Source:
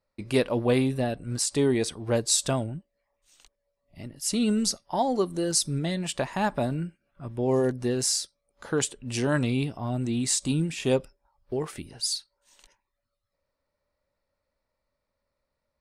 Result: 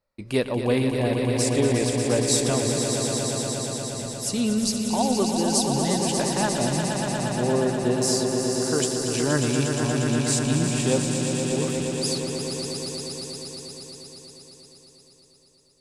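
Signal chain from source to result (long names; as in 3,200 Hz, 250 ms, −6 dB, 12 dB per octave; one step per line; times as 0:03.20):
echo that builds up and dies away 118 ms, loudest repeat 5, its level −7.5 dB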